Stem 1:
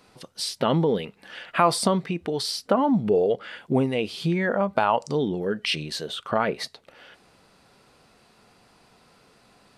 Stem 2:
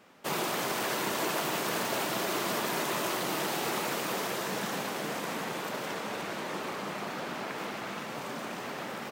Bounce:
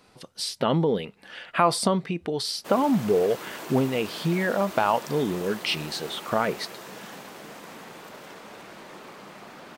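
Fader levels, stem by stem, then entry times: −1.0, −8.0 decibels; 0.00, 2.40 seconds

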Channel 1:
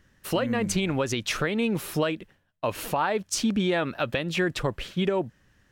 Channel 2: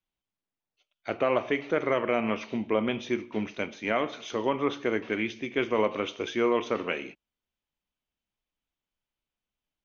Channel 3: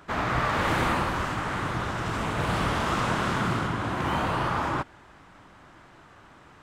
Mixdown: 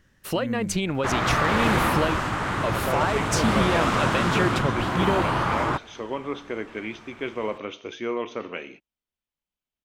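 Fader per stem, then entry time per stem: 0.0, −3.5, +3.0 decibels; 0.00, 1.65, 0.95 seconds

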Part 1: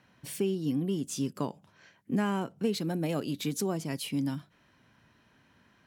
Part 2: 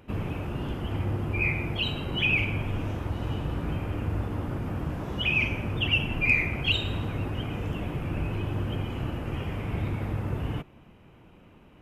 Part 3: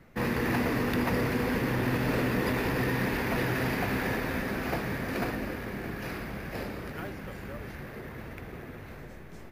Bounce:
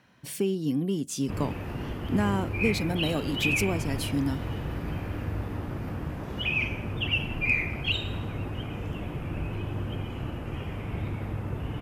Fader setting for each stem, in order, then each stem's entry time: +2.5, −2.5, −17.0 decibels; 0.00, 1.20, 1.15 seconds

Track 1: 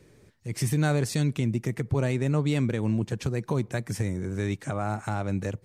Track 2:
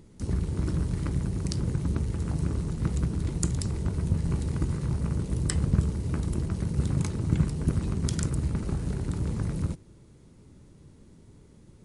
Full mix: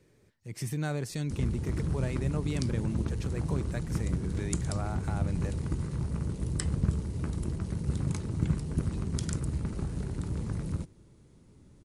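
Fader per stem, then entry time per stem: −8.0, −4.0 decibels; 0.00, 1.10 seconds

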